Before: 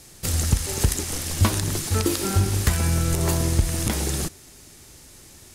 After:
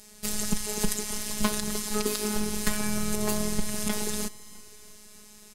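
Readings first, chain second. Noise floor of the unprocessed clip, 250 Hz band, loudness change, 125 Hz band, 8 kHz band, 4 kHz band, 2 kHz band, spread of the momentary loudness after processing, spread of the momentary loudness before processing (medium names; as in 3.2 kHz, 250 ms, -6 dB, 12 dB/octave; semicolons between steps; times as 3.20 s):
-48 dBFS, -2.5 dB, -6.0 dB, -16.5 dB, -3.5 dB, -3.5 dB, -3.5 dB, 20 LU, 5 LU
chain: robot voice 211 Hz; feedback delay 328 ms, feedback 56%, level -21 dB; trim -1.5 dB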